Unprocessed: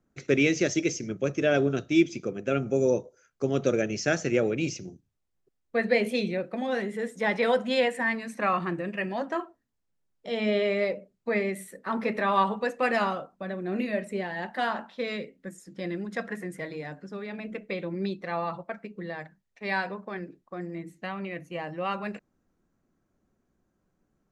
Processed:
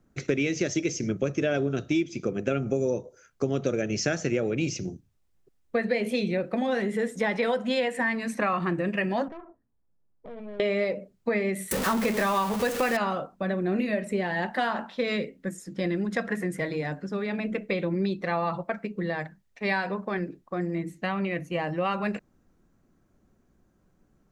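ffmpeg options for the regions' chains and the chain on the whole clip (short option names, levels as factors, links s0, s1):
-filter_complex "[0:a]asettb=1/sr,asplit=3[s0][s1][s2];[s0]atrim=end=9.284[s3];[s1]atrim=start=9.28:end=10.6,asetpts=PTS-STARTPTS,afade=t=in:d=0.004:c=qsin,afade=t=out:st=1.316:d=0.004:c=qsin,lowpass=1100,acompressor=threshold=0.00631:ratio=4:attack=3.2:release=140:knee=1:detection=peak,aeval=exprs='(tanh(141*val(0)+0.55)-tanh(0.55))/141':c=same[s4];[s2]atrim=start=10.596[s5];[s3][s4]acrossfade=d=0.004:c1=hsin:c2=qsin[s6];[s6][s5]acrossfade=d=0.004:c1=qsin:c2=hsin,asettb=1/sr,asplit=3[s7][s8][s9];[s7]atrim=end=11.714[s10];[s8]atrim=start=11.71:end=12.97,asetpts=PTS-STARTPTS,afade=t=in:d=0.004:c=qsin,afade=t=out:st=1.256:d=0.004:c=qsin,aeval=exprs='val(0)+0.5*0.0316*sgn(val(0))':c=same,highshelf=f=5900:g=7[s11];[s9]atrim=start=12.966[s12];[s10][s11]acrossfade=d=0.004:c1=hsin:c2=qsin[s13];[s13][s12]acrossfade=d=0.004:c1=qsin:c2=hsin,lowshelf=f=150:g=5,acompressor=threshold=0.0355:ratio=6,volume=2"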